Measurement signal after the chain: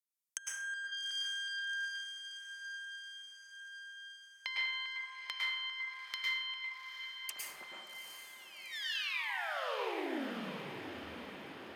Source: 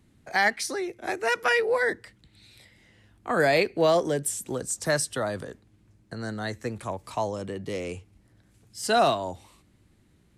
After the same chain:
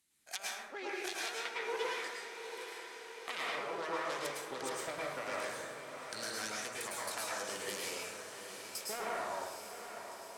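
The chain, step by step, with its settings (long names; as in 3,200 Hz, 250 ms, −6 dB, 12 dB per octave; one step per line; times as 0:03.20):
phase distortion by the signal itself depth 0.42 ms
first-order pre-emphasis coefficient 0.97
treble cut that deepens with the level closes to 850 Hz, closed at −29 dBFS
noise gate −56 dBFS, range −16 dB
low-shelf EQ 160 Hz −6.5 dB
downward compressor 6 to 1, threshold −56 dBFS
feedback delay with all-pass diffusion 785 ms, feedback 65%, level −8.5 dB
dense smooth reverb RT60 1.1 s, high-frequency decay 0.45×, pre-delay 95 ms, DRR −5 dB
level +14.5 dB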